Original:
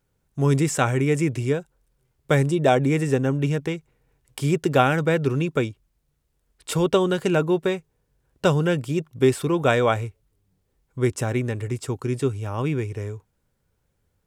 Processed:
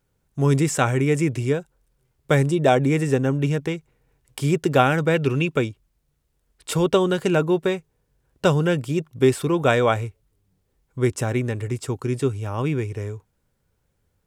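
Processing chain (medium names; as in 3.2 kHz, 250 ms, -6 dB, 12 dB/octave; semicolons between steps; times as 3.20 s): 5.14–5.58 s: peaking EQ 2.7 kHz +8.5 dB 0.55 oct; trim +1 dB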